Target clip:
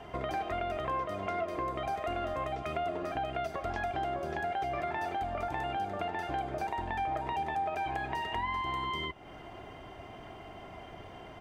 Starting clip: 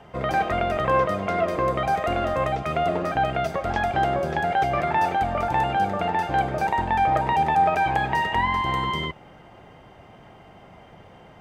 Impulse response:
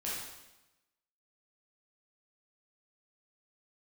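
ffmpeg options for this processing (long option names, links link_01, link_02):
-af "aecho=1:1:2.9:0.45,acompressor=threshold=-36dB:ratio=3"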